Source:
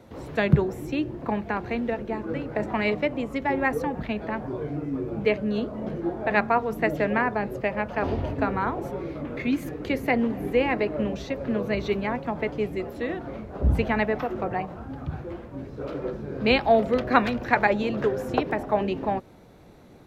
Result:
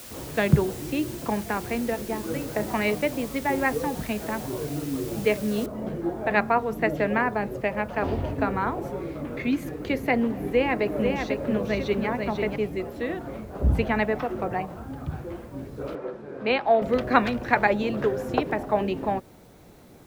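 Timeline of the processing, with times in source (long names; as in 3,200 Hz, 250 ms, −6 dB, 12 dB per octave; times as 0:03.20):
0:05.66: noise floor change −43 dB −63 dB
0:10.36–0:12.56: single-tap delay 493 ms −5 dB
0:15.95–0:16.82: resonant band-pass 990 Hz, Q 0.5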